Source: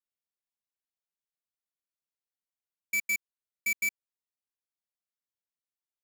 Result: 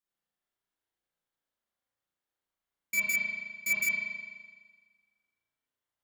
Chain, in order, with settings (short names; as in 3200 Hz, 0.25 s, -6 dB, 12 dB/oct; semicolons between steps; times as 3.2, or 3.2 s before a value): bell 2500 Hz -6 dB 0.35 oct; spring tank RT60 1.5 s, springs 35 ms, chirp 55 ms, DRR -9 dB